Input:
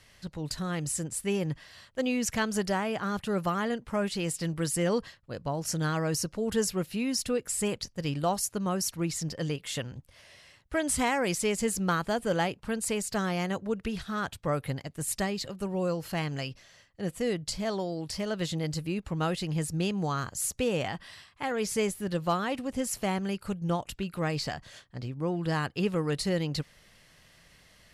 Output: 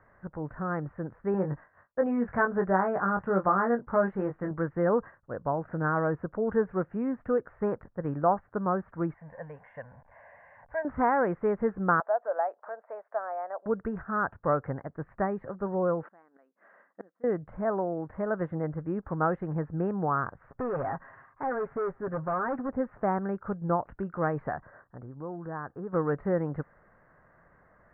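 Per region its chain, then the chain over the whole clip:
0:01.32–0:04.51: noise gate −51 dBFS, range −26 dB + double-tracking delay 21 ms −5 dB
0:09.14–0:10.85: converter with a step at zero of −41.5 dBFS + low-shelf EQ 480 Hz −11.5 dB + phaser with its sweep stopped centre 1,300 Hz, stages 6
0:12.00–0:13.66: four-pole ladder high-pass 590 Hz, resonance 70% + upward compression, threshold −40 dBFS
0:16.03–0:17.24: high-shelf EQ 3,100 Hz +10.5 dB + gate with flip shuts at −26 dBFS, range −28 dB + linear-phase brick-wall high-pass 180 Hz
0:20.50–0:22.69: comb filter 7.4 ms, depth 57% + hard clipping −30.5 dBFS
0:24.66–0:25.93: inverse Chebyshev low-pass filter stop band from 9,500 Hz, stop band 80 dB + downward compressor 2 to 1, threshold −42 dBFS
whole clip: Butterworth low-pass 1,600 Hz 48 dB per octave; low-shelf EQ 300 Hz −10 dB; level +6 dB

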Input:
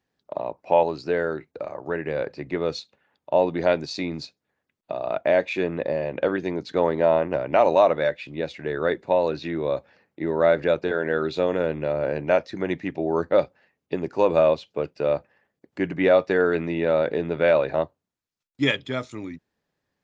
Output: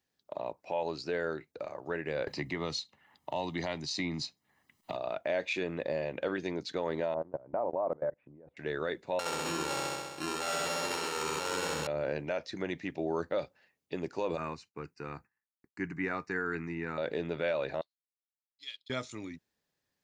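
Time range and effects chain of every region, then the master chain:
0:02.27–0:04.96: comb filter 1 ms, depth 57% + multiband upward and downward compressor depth 70%
0:07.14–0:08.57: low-pass filter 1,100 Hz 24 dB per octave + output level in coarse steps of 23 dB
0:09.19–0:11.87: samples sorted by size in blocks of 32 samples + high-frequency loss of the air 60 metres + flutter between parallel walls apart 11.1 metres, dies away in 1.4 s
0:14.37–0:16.98: downward expander −53 dBFS + phaser with its sweep stopped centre 1,400 Hz, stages 4
0:17.81–0:18.90: mu-law and A-law mismatch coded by A + resonant band-pass 4,200 Hz, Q 8
whole clip: high-shelf EQ 3,000 Hz +11.5 dB; brickwall limiter −14.5 dBFS; level −8 dB

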